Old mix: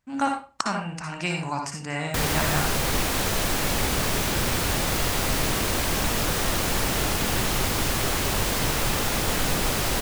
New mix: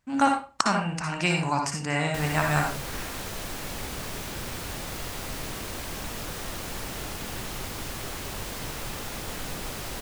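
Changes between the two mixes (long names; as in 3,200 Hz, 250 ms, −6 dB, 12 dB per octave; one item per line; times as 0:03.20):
speech +3.0 dB
background −10.5 dB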